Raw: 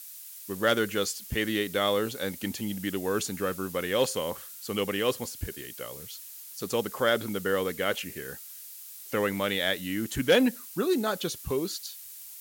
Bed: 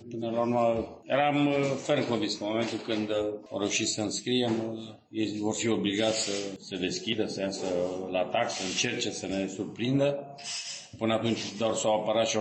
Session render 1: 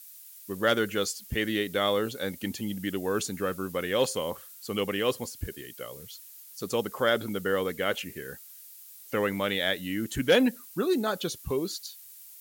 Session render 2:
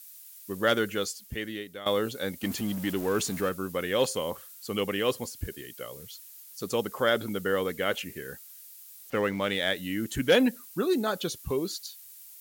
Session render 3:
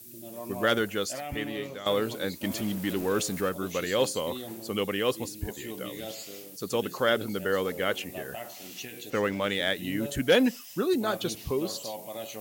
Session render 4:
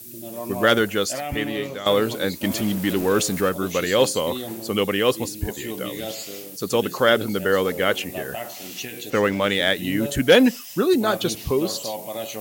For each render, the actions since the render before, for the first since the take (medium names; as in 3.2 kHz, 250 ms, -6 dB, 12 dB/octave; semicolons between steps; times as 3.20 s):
noise reduction 6 dB, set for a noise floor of -45 dBFS
0.76–1.86 s: fade out, to -16 dB; 2.43–3.49 s: jump at every zero crossing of -36 dBFS; 9.10–9.75 s: median filter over 5 samples
add bed -12.5 dB
trim +7.5 dB